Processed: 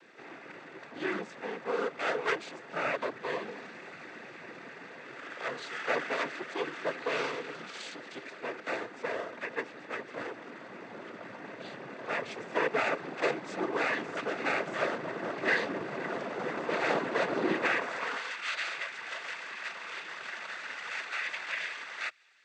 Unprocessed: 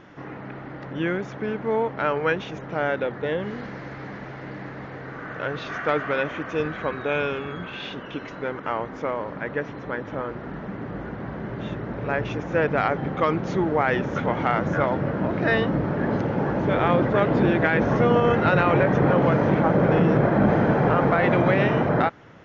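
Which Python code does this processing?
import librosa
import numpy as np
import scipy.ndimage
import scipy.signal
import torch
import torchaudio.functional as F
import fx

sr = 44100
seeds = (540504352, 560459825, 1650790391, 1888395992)

y = fx.lower_of_two(x, sr, delay_ms=0.5)
y = fx.noise_vocoder(y, sr, seeds[0], bands=16)
y = fx.filter_sweep_highpass(y, sr, from_hz=400.0, to_hz=2000.0, start_s=17.65, end_s=18.29, q=0.72)
y = y * librosa.db_to_amplitude(-4.5)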